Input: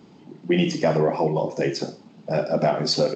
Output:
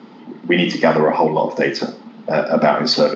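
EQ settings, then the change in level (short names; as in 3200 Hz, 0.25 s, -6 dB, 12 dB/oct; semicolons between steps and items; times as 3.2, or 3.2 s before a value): dynamic EQ 430 Hz, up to -4 dB, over -31 dBFS, Q 0.73; speaker cabinet 230–5400 Hz, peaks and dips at 230 Hz +10 dB, 500 Hz +4 dB, 910 Hz +6 dB, 1300 Hz +8 dB, 1900 Hz +7 dB, 3400 Hz +3 dB; +6.5 dB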